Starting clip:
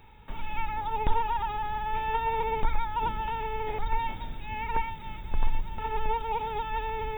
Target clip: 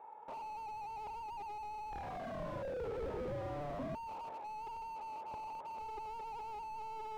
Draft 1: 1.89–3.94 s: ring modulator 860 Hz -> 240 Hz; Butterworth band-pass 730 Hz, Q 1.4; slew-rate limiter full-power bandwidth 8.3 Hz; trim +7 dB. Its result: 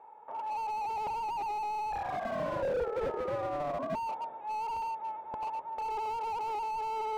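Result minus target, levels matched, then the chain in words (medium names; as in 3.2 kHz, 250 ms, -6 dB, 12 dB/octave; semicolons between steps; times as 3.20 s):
slew-rate limiter: distortion -9 dB
1.89–3.94 s: ring modulator 860 Hz -> 240 Hz; Butterworth band-pass 730 Hz, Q 1.4; slew-rate limiter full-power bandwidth 2.5 Hz; trim +7 dB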